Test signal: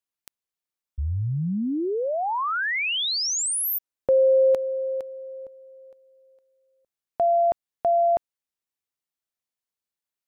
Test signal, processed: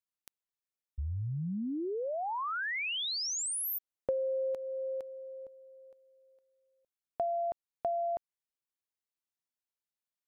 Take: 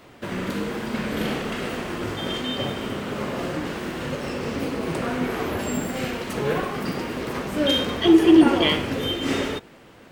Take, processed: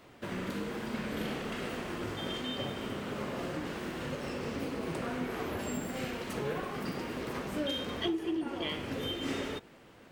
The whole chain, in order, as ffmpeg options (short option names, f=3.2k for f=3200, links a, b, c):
-af "acompressor=threshold=-23dB:ratio=16:attack=41:release=619:knee=6:detection=peak,volume=-7.5dB"